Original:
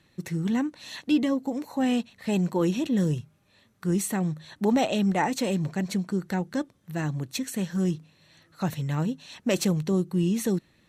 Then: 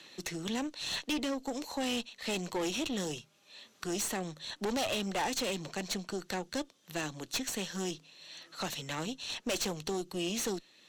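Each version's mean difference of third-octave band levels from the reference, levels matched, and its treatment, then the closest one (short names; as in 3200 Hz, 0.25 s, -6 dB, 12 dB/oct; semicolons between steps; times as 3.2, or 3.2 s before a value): 9.0 dB: HPF 350 Hz 12 dB/oct; band shelf 4400 Hz +8.5 dB; tube stage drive 28 dB, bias 0.6; three-band squash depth 40%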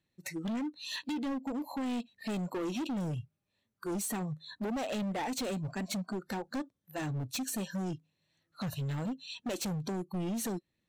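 5.5 dB: spectral noise reduction 21 dB; bell 1300 Hz -3.5 dB 0.91 oct; compressor 8:1, threshold -30 dBFS, peak gain reduction 12.5 dB; hard clip -34.5 dBFS, distortion -9 dB; gain +2.5 dB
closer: second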